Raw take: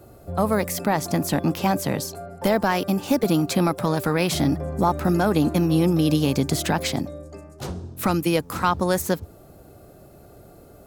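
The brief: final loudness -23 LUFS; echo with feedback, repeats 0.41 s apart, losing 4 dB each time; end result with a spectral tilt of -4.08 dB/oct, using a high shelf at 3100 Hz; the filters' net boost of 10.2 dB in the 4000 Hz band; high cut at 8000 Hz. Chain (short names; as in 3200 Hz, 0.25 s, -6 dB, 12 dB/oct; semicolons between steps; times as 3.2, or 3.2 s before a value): LPF 8000 Hz; high shelf 3100 Hz +8.5 dB; bell 4000 Hz +6.5 dB; feedback echo 0.41 s, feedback 63%, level -4 dB; gain -4 dB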